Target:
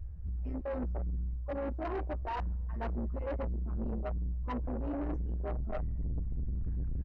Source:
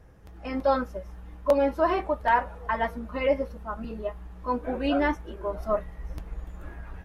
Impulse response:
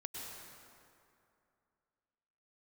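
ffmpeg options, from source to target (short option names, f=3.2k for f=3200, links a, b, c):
-filter_complex "[0:a]areverse,acompressor=threshold=-33dB:ratio=4,areverse,aemphasis=mode=reproduction:type=bsi,asplit=2[a][b];[b]adelay=13,volume=-8dB[c];[a][c]amix=inputs=2:normalize=0,asplit=2[d][e];[e]equalizer=f=330:t=o:w=1:g=10.5[f];[1:a]atrim=start_sample=2205[g];[f][g]afir=irnorm=-1:irlink=0,volume=-18.5dB[h];[d][h]amix=inputs=2:normalize=0,afwtdn=0.0447,asoftclip=type=tanh:threshold=-31.5dB,bandreject=f=3.4k:w=9.9"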